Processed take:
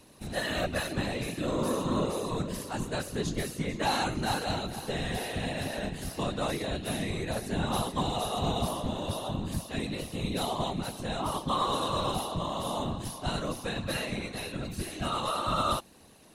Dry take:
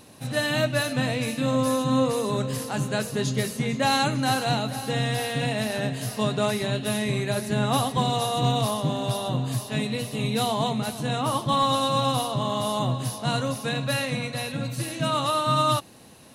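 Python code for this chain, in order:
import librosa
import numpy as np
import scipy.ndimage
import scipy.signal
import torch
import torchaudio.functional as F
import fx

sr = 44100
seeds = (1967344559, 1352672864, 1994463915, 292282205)

y = fx.whisperise(x, sr, seeds[0])
y = y * librosa.db_to_amplitude(-6.5)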